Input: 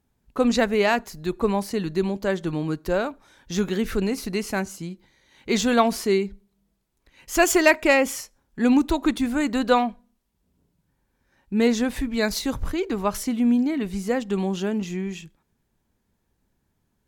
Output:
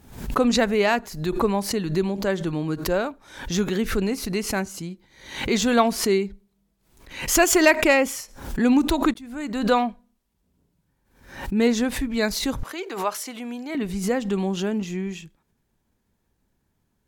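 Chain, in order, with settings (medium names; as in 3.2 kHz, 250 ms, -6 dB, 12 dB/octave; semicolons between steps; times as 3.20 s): 9.14–9.83 s: fade in; 12.63–13.75 s: high-pass 550 Hz 12 dB/octave; swell ahead of each attack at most 94 dB/s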